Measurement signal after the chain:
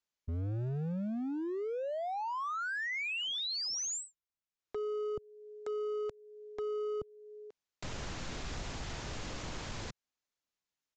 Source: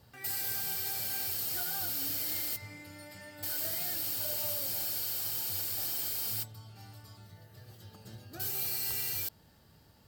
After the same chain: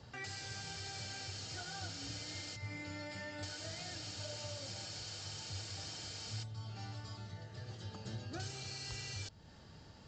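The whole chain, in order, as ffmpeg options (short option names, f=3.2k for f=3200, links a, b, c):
-filter_complex "[0:a]acrossover=split=140[a][b];[b]acompressor=threshold=-48dB:ratio=2[c];[a][c]amix=inputs=2:normalize=0,aresample=16000,asoftclip=type=hard:threshold=-39dB,aresample=44100,volume=5dB"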